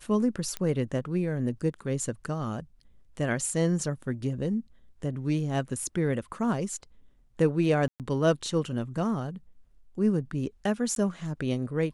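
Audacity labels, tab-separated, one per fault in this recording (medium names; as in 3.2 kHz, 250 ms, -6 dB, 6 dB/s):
0.570000	0.570000	pop -16 dBFS
7.880000	8.000000	dropout 118 ms
10.950000	10.960000	dropout 12 ms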